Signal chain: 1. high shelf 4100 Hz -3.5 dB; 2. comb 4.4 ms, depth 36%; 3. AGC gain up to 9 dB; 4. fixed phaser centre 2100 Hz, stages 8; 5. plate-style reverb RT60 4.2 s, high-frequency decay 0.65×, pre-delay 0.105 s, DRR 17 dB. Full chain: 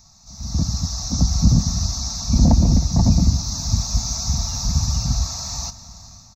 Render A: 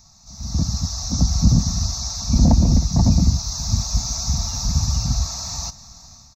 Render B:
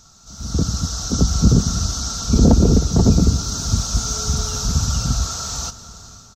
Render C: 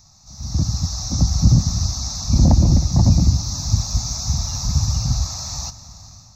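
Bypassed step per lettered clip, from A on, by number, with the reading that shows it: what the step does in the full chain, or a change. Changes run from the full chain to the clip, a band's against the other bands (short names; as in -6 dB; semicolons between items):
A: 5, momentary loudness spread change -1 LU; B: 4, loudness change +1.5 LU; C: 2, 125 Hz band +2.5 dB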